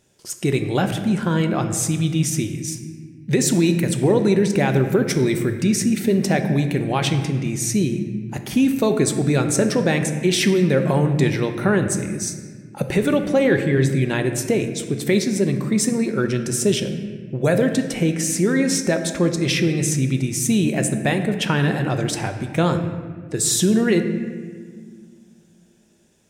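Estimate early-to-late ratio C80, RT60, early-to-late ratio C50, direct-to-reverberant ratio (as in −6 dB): 9.5 dB, 1.7 s, 8.5 dB, 6.5 dB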